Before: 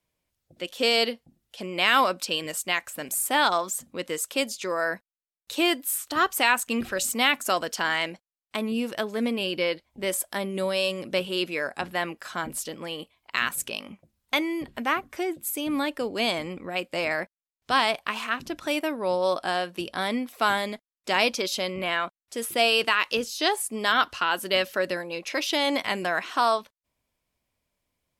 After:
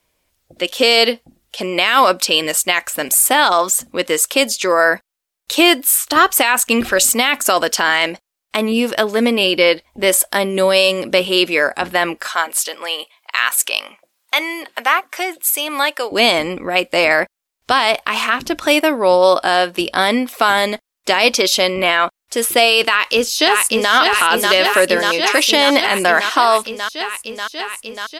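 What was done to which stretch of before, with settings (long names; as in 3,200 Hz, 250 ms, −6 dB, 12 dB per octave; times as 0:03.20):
0:12.27–0:16.12: high-pass filter 690 Hz
0:22.85–0:23.93: delay throw 590 ms, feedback 80%, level −6 dB
whole clip: parametric band 140 Hz −8 dB 1.6 octaves; boost into a limiter +15.5 dB; level −1 dB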